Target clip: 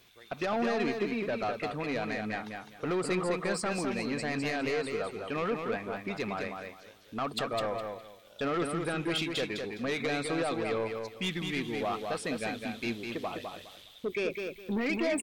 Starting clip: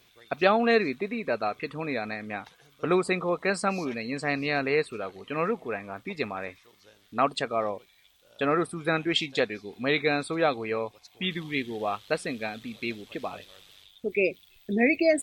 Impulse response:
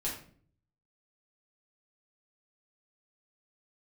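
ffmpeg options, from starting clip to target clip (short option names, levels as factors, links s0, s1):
-af "alimiter=limit=0.133:level=0:latency=1:release=41,asoftclip=type=tanh:threshold=0.0501,aecho=1:1:206|412|618:0.562|0.129|0.0297"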